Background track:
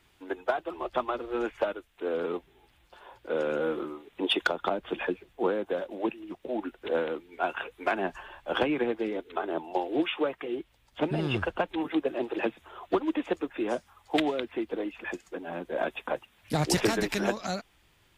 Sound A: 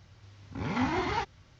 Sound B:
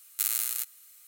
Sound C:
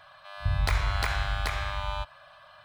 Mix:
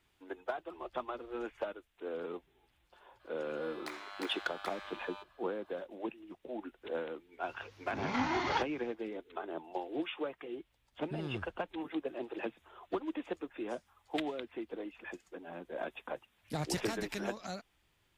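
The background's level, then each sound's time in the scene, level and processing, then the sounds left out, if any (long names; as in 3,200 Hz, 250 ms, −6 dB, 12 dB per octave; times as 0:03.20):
background track −9.5 dB
0:03.19: mix in C −14 dB, fades 0.02 s + Butterworth high-pass 280 Hz
0:07.38: mix in A −1.5 dB, fades 0.10 s + low-shelf EQ 160 Hz −11.5 dB
not used: B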